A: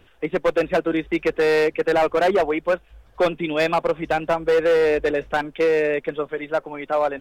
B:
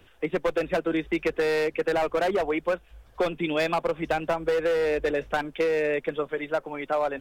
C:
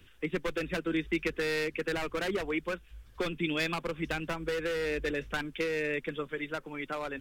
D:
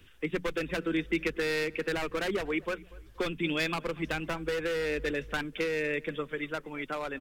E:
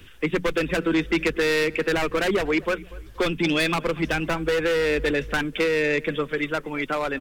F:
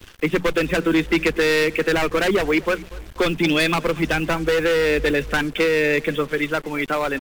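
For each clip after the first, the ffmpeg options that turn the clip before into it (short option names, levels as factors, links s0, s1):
-filter_complex "[0:a]highshelf=f=5000:g=4.5,acrossover=split=120[s0][s1];[s1]acompressor=threshold=0.112:ratio=6[s2];[s0][s2]amix=inputs=2:normalize=0,volume=0.794"
-af "equalizer=f=690:t=o:w=1.3:g=-15"
-filter_complex "[0:a]bandreject=f=60:t=h:w=6,bandreject=f=120:t=h:w=6,bandreject=f=180:t=h:w=6,asplit=2[s0][s1];[s1]adelay=240,lowpass=f=1700:p=1,volume=0.0891,asplit=2[s2][s3];[s3]adelay=240,lowpass=f=1700:p=1,volume=0.4,asplit=2[s4][s5];[s5]adelay=240,lowpass=f=1700:p=1,volume=0.4[s6];[s0][s2][s4][s6]amix=inputs=4:normalize=0,volume=1.12"
-af "aeval=exprs='0.158*sin(PI/2*2*val(0)/0.158)':c=same"
-af "acrusher=bits=6:mix=0:aa=0.5,volume=1.5"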